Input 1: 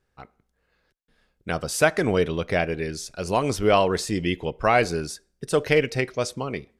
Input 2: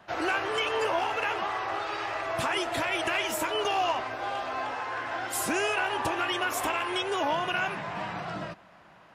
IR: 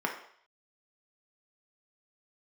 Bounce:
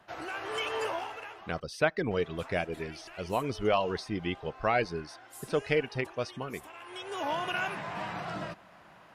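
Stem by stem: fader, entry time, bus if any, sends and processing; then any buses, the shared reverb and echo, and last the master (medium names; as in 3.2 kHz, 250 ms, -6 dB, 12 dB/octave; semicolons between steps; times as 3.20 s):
-7.5 dB, 0.00 s, no send, reverb removal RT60 0.65 s; Savitzky-Golay filter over 15 samples
-4.5 dB, 0.00 s, muted 1.60–2.11 s, no send, peaking EQ 12 kHz +5.5 dB 0.89 oct; gain riding within 4 dB 2 s; auto duck -16 dB, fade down 0.60 s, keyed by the first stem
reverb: none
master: none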